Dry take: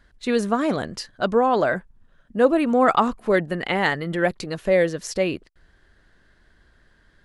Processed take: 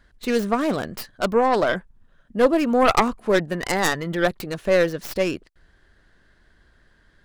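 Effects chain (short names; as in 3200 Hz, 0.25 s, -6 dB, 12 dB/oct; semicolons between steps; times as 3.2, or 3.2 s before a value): tracing distortion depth 0.32 ms; 3.52–4.08 whine 1000 Hz -53 dBFS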